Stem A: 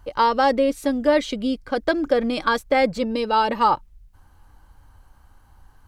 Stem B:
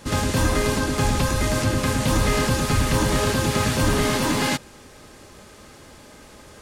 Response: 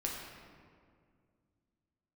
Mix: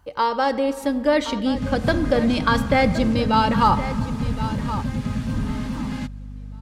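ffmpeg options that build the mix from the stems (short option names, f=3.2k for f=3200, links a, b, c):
-filter_complex "[0:a]highpass=62,asubboost=boost=8:cutoff=160,dynaudnorm=f=150:g=11:m=5dB,volume=-4.5dB,asplit=3[a][b][c];[b]volume=-10.5dB[d];[c]volume=-10.5dB[e];[1:a]lowpass=f=3.3k:p=1,lowshelf=f=290:t=q:w=3:g=7.5,aeval=exprs='val(0)+0.0891*(sin(2*PI*50*n/s)+sin(2*PI*2*50*n/s)/2+sin(2*PI*3*50*n/s)/3+sin(2*PI*4*50*n/s)/4+sin(2*PI*5*50*n/s)/5)':c=same,adelay=1500,volume=-12.5dB[f];[2:a]atrim=start_sample=2205[g];[d][g]afir=irnorm=-1:irlink=0[h];[e]aecho=0:1:1070|2140|3210|4280:1|0.22|0.0484|0.0106[i];[a][f][h][i]amix=inputs=4:normalize=0"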